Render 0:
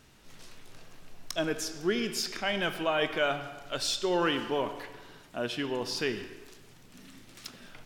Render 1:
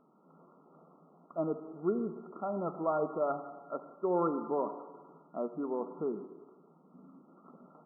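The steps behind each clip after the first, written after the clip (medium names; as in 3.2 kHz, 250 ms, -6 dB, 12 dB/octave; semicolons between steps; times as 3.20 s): FFT band-pass 150–1400 Hz; trim -2 dB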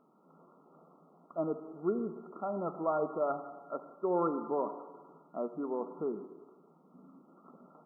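bass shelf 110 Hz -6.5 dB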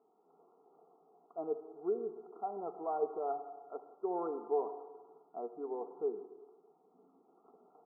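two resonant band-passes 570 Hz, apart 0.73 oct; trim +3 dB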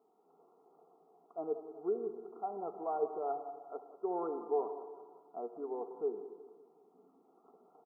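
feedback delay 186 ms, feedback 49%, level -14 dB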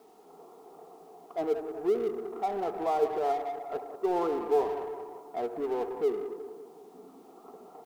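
companding laws mixed up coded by mu; trim +6 dB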